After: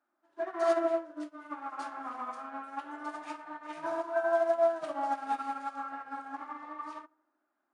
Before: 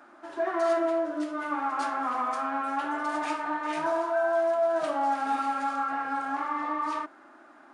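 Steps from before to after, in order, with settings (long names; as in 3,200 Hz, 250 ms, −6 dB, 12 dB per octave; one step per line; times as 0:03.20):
on a send: tape delay 80 ms, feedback 74%, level −9 dB, low-pass 1,100 Hz
on the sum: expander for the loud parts 2.5 to 1, over −41 dBFS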